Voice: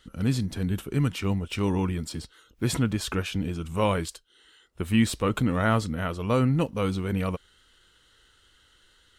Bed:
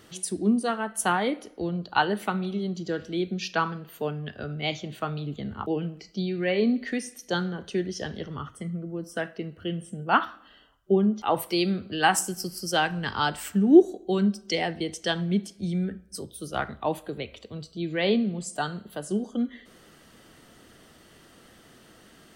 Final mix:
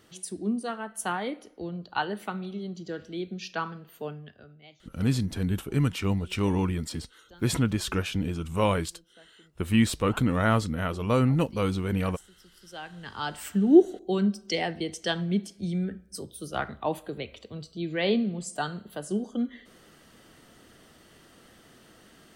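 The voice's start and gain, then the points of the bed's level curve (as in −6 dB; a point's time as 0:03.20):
4.80 s, 0.0 dB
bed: 0:04.11 −6 dB
0:04.75 −26 dB
0:12.37 −26 dB
0:13.50 −1.5 dB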